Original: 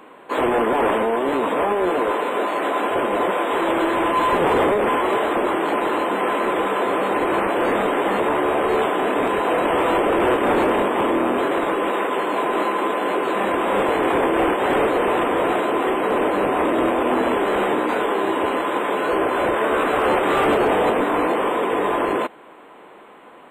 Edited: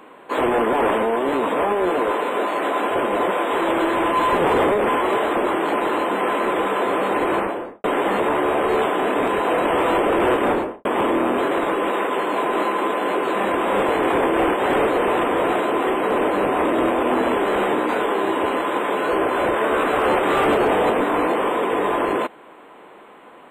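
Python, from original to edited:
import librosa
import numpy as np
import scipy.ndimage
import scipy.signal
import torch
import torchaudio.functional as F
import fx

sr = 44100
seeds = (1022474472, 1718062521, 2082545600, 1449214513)

y = fx.studio_fade_out(x, sr, start_s=7.3, length_s=0.54)
y = fx.studio_fade_out(y, sr, start_s=10.43, length_s=0.42)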